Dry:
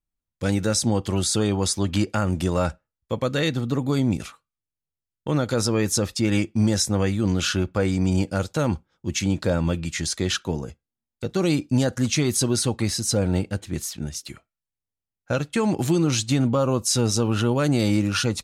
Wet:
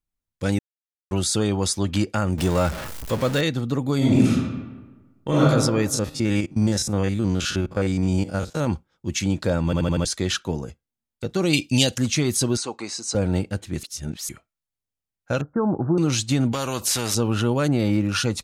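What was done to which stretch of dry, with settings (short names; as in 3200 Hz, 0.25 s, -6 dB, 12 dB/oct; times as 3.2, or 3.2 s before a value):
0.59–1.11 mute
2.38–3.41 zero-crossing step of -26 dBFS
3.97–5.43 reverb throw, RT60 1.3 s, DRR -6.5 dB
5.94–8.67 stepped spectrum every 50 ms
9.65 stutter in place 0.08 s, 5 plays
11.53–11.98 resonant high shelf 2000 Hz +10.5 dB, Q 3
12.57–13.15 speaker cabinet 410–7600 Hz, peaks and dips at 560 Hz -6 dB, 1000 Hz +3 dB, 1800 Hz -7 dB, 3300 Hz -9 dB, 5300 Hz -4 dB
13.83–14.29 reverse
15.41–15.98 steep low-pass 1500 Hz 72 dB/oct
16.52–17.15 spectral compressor 2:1
17.68–18.09 bell 7400 Hz -12.5 dB 1.6 oct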